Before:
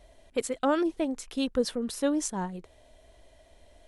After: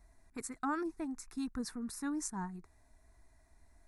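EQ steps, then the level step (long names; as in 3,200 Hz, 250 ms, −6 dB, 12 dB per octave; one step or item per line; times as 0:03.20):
phaser with its sweep stopped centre 1,300 Hz, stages 4
−5.0 dB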